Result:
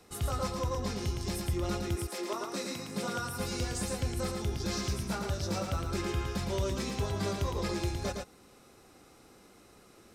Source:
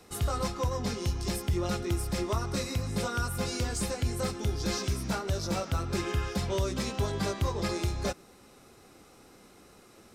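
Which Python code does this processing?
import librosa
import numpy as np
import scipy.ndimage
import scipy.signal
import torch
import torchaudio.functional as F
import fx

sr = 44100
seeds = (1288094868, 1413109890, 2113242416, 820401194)

y = fx.highpass(x, sr, hz=fx.line((1.95, 380.0), (3.38, 91.0)), slope=24, at=(1.95, 3.38), fade=0.02)
y = y + 10.0 ** (-4.5 / 20.0) * np.pad(y, (int(112 * sr / 1000.0), 0))[:len(y)]
y = y * librosa.db_to_amplitude(-3.5)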